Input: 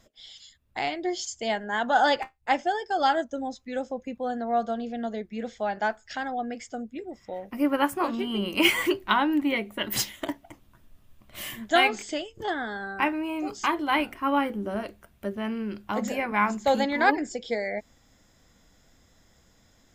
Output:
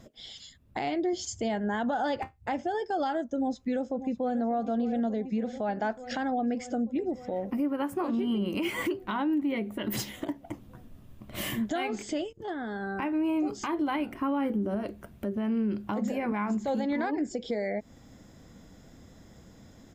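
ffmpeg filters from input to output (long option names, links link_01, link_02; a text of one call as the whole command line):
ffmpeg -i in.wav -filter_complex "[0:a]asettb=1/sr,asplit=3[link_01][link_02][link_03];[link_01]atrim=end=1.134[link_04];[link_02]atrim=start=1.13:end=2.75,asetpts=PTS-STARTPTS,afade=type=in:duration=0.004:curve=qsin,afade=type=out:start_time=1.616:duration=0.004:curve=qsin,equalizer=frequency=91:width=1.5:gain=14.5[link_05];[link_03]atrim=start=2.746[link_06];[link_04][link_05]acrossfade=duration=0.004:curve1=hsin:curve2=qsin[link_07];[link_07][link_06]acrossfade=duration=0.004:curve1=qsin:curve2=hsin,asplit=2[link_08][link_09];[link_09]afade=type=in:start_time=3.35:duration=0.01,afade=type=out:start_time=4.39:duration=0.01,aecho=0:1:590|1180|1770|2360|2950|3540|4130|4720|5310|5900|6490:0.188365|0.141274|0.105955|0.0794664|0.0595998|0.0446999|0.0335249|0.0251437|0.0188578|0.0141433|0.0106075[link_10];[link_08][link_10]amix=inputs=2:normalize=0,asplit=2[link_11][link_12];[link_11]atrim=end=12.33,asetpts=PTS-STARTPTS,afade=type=out:start_time=12.326:duration=0.004:curve=hsin:silence=0.16788[link_13];[link_12]atrim=start=12.33,asetpts=PTS-STARTPTS,afade=type=in:duration=0.88:curve=qua:silence=0.16788[link_14];[link_13][link_14]concat=n=2:v=0:a=1,equalizer=frequency=200:width=0.31:gain=12,acompressor=threshold=-29dB:ratio=2.5,alimiter=limit=-23dB:level=0:latency=1:release=79,volume=1dB" out.wav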